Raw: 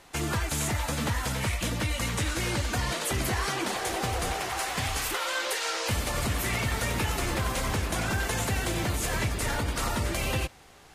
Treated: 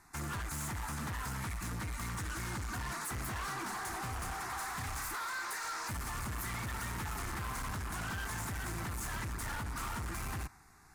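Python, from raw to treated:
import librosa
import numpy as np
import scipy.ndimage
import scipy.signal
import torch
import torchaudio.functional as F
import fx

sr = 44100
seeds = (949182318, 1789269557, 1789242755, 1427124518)

y = fx.dynamic_eq(x, sr, hz=1100.0, q=1.0, threshold_db=-47.0, ratio=4.0, max_db=4)
y = fx.fixed_phaser(y, sr, hz=1300.0, stages=4)
y = np.clip(y, -10.0 ** (-32.0 / 20.0), 10.0 ** (-32.0 / 20.0))
y = F.gain(torch.from_numpy(y), -4.5).numpy()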